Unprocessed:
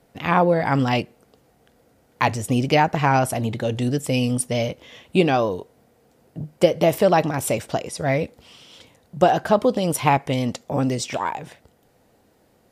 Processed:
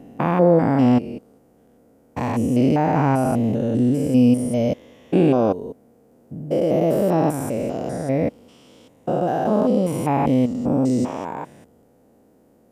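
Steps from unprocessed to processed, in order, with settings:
spectrum averaged block by block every 200 ms
octave-band graphic EQ 250/500/2,000/4,000 Hz +9/+4/−4/−8 dB

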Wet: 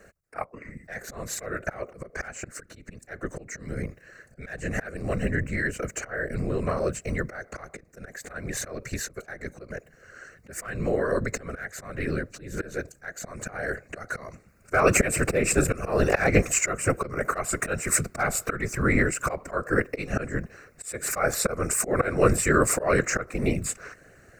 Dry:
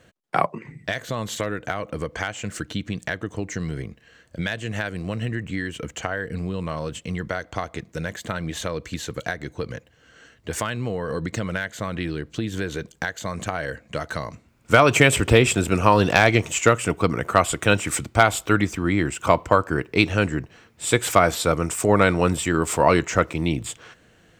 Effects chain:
phaser with its sweep stopped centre 890 Hz, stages 6
volume swells 270 ms
random phases in short frames
level +5 dB

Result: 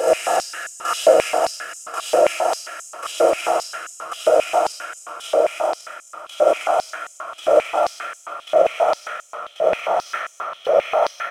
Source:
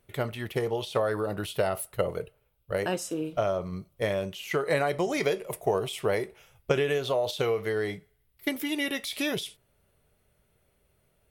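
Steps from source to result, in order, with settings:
peak hold with a rise ahead of every peak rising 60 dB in 1.70 s
in parallel at −1 dB: output level in coarse steps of 20 dB
on the sum: extreme stretch with random phases 33×, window 1.00 s, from 0:03.13
gate pattern "xxx....xx" 124 BPM −60 dB
compressor whose output falls as the input rises −26 dBFS, ratio −0.5
repeating echo 271 ms, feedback 57%, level −9 dB
rectangular room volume 1,400 cubic metres, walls mixed, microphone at 4 metres
high-pass on a step sequencer 7.5 Hz 560–6,900 Hz
level −1 dB

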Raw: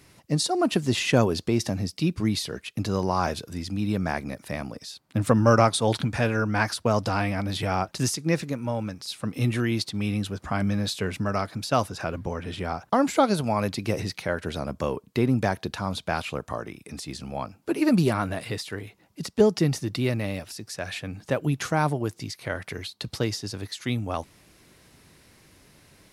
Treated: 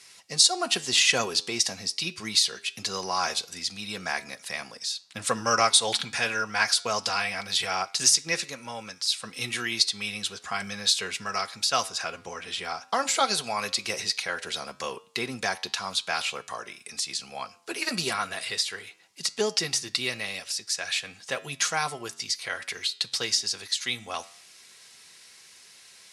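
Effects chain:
meter weighting curve ITU-R 468
flanger 0.93 Hz, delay 9.6 ms, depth 1.7 ms, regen −88%
notch comb filter 300 Hz
level +4 dB

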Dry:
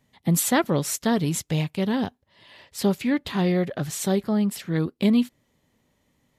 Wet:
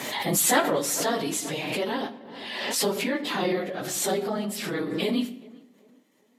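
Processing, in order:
random phases in long frames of 50 ms
high-pass filter 390 Hz 12 dB per octave
on a send: tape delay 392 ms, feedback 43%, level −22.5 dB, low-pass 1,600 Hz
on the sum: rectangular room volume 250 cubic metres, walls mixed, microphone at 0.34 metres
background raised ahead of every attack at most 35 dB per second

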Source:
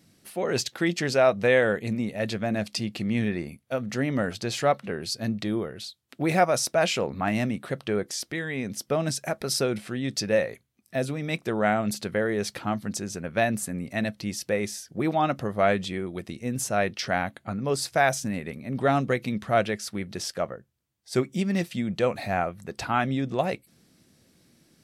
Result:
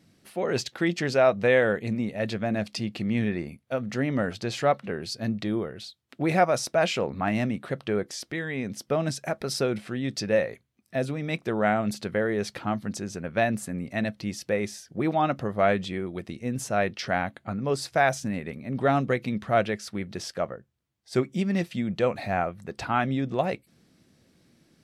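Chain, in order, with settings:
high-shelf EQ 6,200 Hz −9.5 dB

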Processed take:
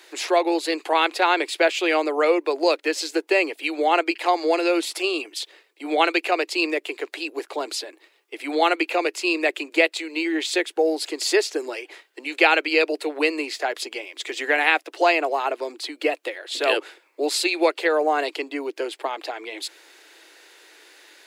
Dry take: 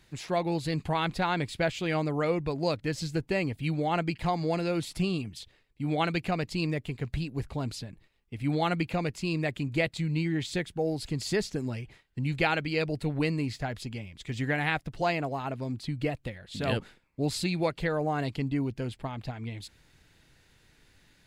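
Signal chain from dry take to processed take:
dynamic equaliser 2,600 Hz, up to +5 dB, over −50 dBFS, Q 5.9
in parallel at +2 dB: downward compressor, threshold −38 dBFS, peak gain reduction 16.5 dB
on the sum: Butterworth high-pass 320 Hz 72 dB per octave
level +7.5 dB

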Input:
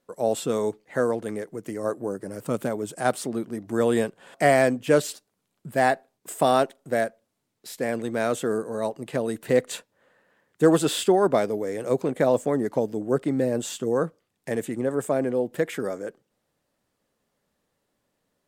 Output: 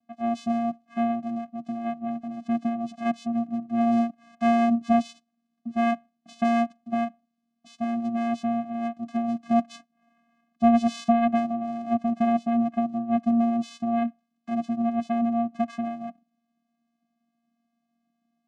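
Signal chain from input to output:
channel vocoder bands 4, square 233 Hz

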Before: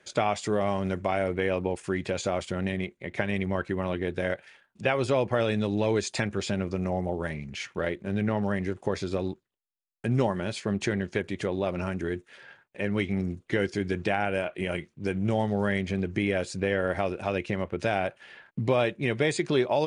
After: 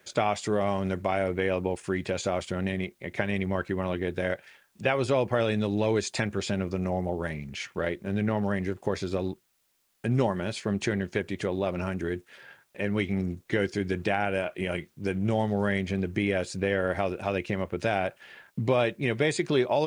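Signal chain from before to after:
bit-depth reduction 12 bits, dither triangular

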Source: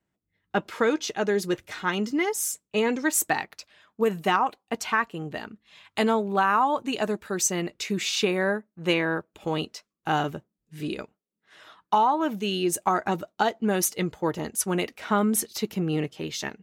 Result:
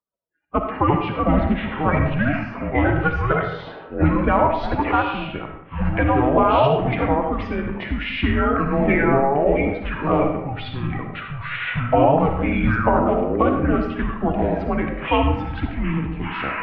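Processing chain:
spectral magnitudes quantised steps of 30 dB
noise reduction from a noise print of the clip's start 25 dB
delay with pitch and tempo change per echo 117 ms, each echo −6 semitones, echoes 2
single-sideband voice off tune −140 Hz 190–3,400 Hz
de-essing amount 70%
formants moved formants −3 semitones
comb and all-pass reverb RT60 0.81 s, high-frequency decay 0.6×, pre-delay 20 ms, DRR 4 dB
level +5 dB

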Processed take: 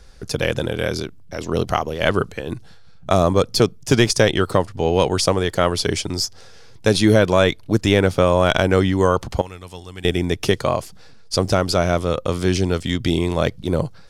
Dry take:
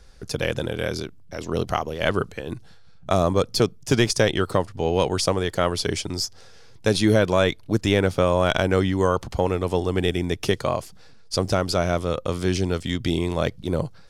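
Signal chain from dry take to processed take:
0:09.41–0:10.05: guitar amp tone stack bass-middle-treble 5-5-5
level +4 dB

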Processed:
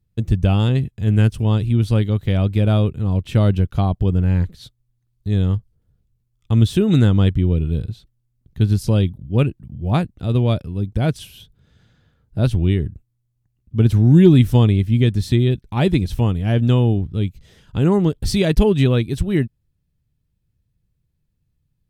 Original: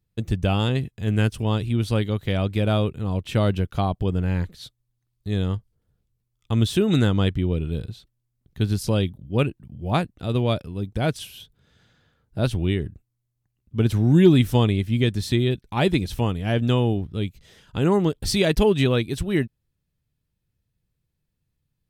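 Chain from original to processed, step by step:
low-shelf EQ 260 Hz +9.5 dB
level −1 dB

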